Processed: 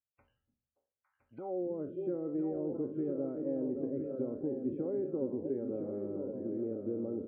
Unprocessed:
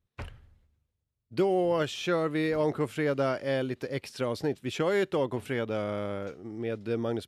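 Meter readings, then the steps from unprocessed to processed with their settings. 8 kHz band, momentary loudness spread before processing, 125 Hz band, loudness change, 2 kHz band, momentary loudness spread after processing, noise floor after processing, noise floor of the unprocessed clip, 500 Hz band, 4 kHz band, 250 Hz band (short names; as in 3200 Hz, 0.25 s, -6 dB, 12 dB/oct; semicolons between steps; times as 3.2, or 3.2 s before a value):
under -30 dB, 10 LU, -11.5 dB, -6.5 dB, under -30 dB, 3 LU, under -85 dBFS, -82 dBFS, -7.5 dB, under -40 dB, -3.0 dB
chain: spectral trails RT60 0.36 s; delay with a stepping band-pass 0.285 s, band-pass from 190 Hz, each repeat 1.4 oct, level -7.5 dB; loudest bins only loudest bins 64; air absorption 410 m; compressor 4:1, threshold -39 dBFS, peak gain reduction 14 dB; small resonant body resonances 260/550/790/1300 Hz, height 7 dB; band-pass sweep 7000 Hz -> 360 Hz, 0.95–1.61; tilt -4 dB/oct; echo 1.013 s -7 dB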